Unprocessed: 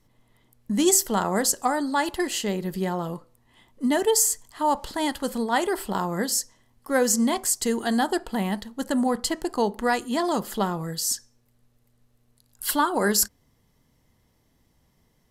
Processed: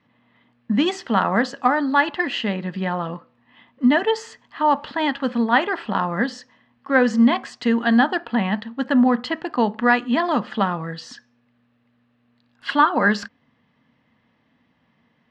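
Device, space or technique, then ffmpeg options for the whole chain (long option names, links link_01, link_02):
kitchen radio: -af "highpass=160,equalizer=frequency=240:width_type=q:width=4:gain=6,equalizer=frequency=380:width_type=q:width=4:gain=-9,equalizer=frequency=1200:width_type=q:width=4:gain=4,equalizer=frequency=1700:width_type=q:width=4:gain=6,equalizer=frequency=2600:width_type=q:width=4:gain=5,lowpass=frequency=3600:width=0.5412,lowpass=frequency=3600:width=1.3066,volume=4dB"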